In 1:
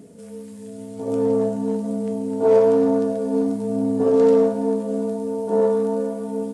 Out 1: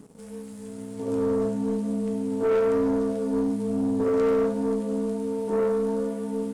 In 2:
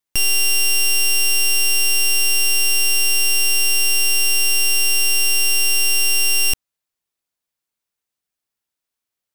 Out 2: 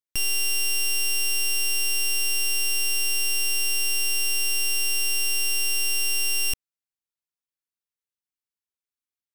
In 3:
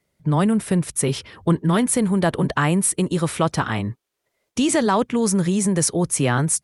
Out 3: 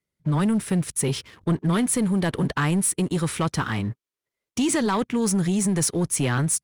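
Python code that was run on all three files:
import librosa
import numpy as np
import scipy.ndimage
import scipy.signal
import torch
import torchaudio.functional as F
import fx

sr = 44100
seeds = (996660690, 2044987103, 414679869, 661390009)

y = fx.peak_eq(x, sr, hz=670.0, db=-7.0, octaves=0.73)
y = fx.leveller(y, sr, passes=2)
y = y * librosa.db_to_amplitude(-8.5)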